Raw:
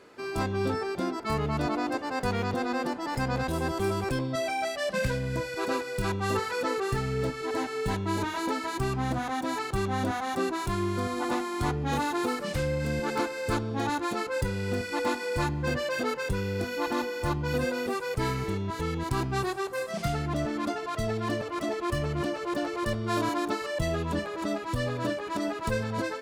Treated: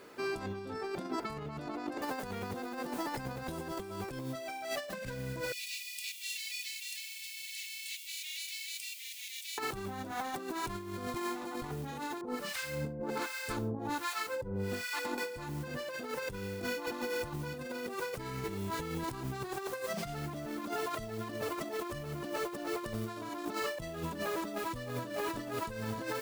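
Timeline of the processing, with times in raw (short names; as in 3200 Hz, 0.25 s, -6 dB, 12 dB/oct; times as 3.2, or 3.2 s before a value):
2.02 noise floor step -69 dB -49 dB
5.52–9.58 steep high-pass 2200 Hz 72 dB/oct
11.14–11.62 reverse
12.21–15.18 harmonic tremolo 1.3 Hz, depth 100%, crossover 1000 Hz
24.55–24.99 echo throw 0.6 s, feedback 35%, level -6.5 dB
whole clip: bell 75 Hz -9 dB 0.57 oct; limiter -21.5 dBFS; negative-ratio compressor -34 dBFS, ratio -0.5; gain -3 dB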